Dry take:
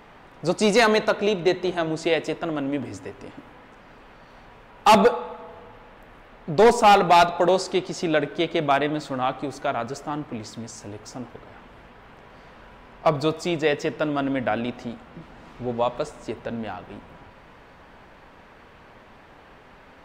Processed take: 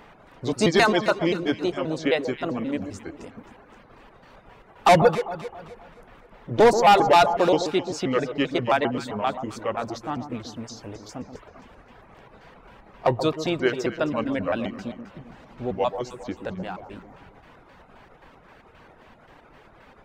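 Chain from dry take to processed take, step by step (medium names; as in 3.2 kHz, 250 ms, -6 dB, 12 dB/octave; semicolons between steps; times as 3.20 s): pitch shift switched off and on -3.5 st, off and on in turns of 132 ms; reverb removal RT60 0.76 s; echo whose repeats swap between lows and highs 132 ms, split 1.1 kHz, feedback 60%, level -9 dB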